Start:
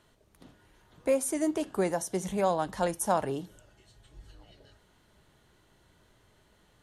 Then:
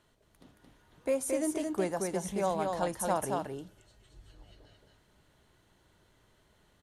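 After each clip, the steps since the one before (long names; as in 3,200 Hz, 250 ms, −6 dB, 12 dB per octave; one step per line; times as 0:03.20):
single-tap delay 223 ms −3.5 dB
level −4 dB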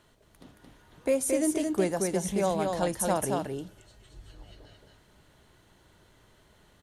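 dynamic equaliser 1,000 Hz, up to −6 dB, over −46 dBFS, Q 1
level +6 dB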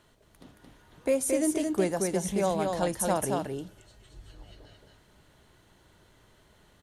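no processing that can be heard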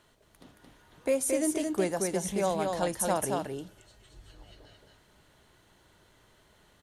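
low-shelf EQ 360 Hz −4 dB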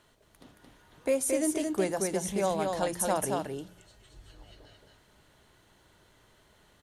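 hum removal 175.9 Hz, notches 2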